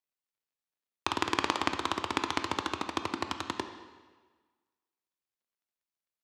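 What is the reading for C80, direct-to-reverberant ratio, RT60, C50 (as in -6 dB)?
10.5 dB, 7.0 dB, 1.4 s, 9.0 dB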